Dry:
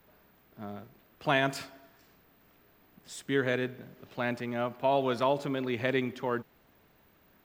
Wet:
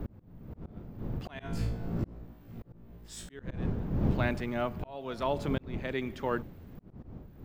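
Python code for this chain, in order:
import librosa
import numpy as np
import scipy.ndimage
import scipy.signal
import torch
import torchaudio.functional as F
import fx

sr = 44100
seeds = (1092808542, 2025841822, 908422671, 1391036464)

y = fx.dmg_wind(x, sr, seeds[0], corner_hz=180.0, level_db=-28.0)
y = fx.room_flutter(y, sr, wall_m=3.0, rt60_s=0.32, at=(1.38, 3.31), fade=0.02)
y = fx.auto_swell(y, sr, attack_ms=675.0)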